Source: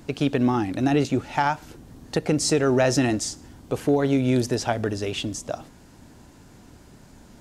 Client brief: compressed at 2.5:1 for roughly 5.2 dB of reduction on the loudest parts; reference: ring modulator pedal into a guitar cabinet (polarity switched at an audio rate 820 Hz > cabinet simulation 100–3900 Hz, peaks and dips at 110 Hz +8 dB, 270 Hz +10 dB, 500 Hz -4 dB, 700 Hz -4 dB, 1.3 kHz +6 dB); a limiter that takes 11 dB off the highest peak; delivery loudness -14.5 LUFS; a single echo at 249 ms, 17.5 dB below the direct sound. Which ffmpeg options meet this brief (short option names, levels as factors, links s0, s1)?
-af "acompressor=threshold=0.0631:ratio=2.5,alimiter=limit=0.0891:level=0:latency=1,aecho=1:1:249:0.133,aeval=exprs='val(0)*sgn(sin(2*PI*820*n/s))':c=same,highpass=100,equalizer=f=110:t=q:w=4:g=8,equalizer=f=270:t=q:w=4:g=10,equalizer=f=500:t=q:w=4:g=-4,equalizer=f=700:t=q:w=4:g=-4,equalizer=f=1300:t=q:w=4:g=6,lowpass=f=3900:w=0.5412,lowpass=f=3900:w=1.3066,volume=5.96"